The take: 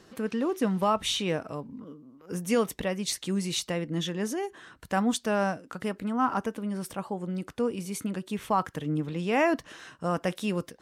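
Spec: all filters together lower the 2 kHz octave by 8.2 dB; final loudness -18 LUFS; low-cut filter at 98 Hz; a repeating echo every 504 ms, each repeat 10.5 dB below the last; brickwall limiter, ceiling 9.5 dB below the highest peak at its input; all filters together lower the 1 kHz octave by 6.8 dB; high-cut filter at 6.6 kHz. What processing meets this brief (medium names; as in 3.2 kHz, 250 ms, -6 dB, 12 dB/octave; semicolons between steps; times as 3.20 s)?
high-pass 98 Hz; low-pass 6.6 kHz; peaking EQ 1 kHz -7 dB; peaking EQ 2 kHz -8.5 dB; peak limiter -25.5 dBFS; feedback delay 504 ms, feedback 30%, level -10.5 dB; trim +17 dB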